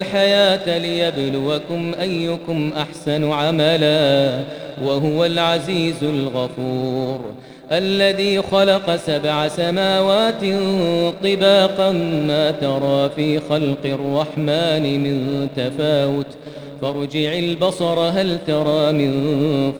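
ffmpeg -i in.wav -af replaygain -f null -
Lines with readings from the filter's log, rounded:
track_gain = -2.1 dB
track_peak = 0.531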